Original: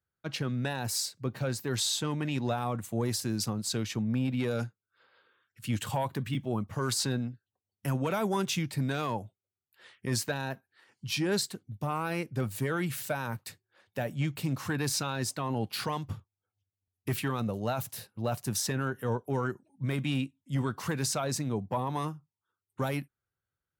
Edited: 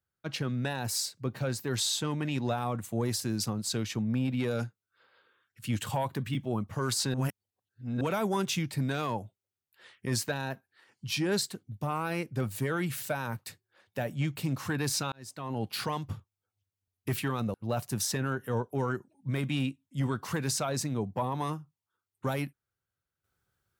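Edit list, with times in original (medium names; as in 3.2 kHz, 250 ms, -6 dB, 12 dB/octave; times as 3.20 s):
7.14–8.01 s: reverse
15.12–15.69 s: fade in
17.54–18.09 s: delete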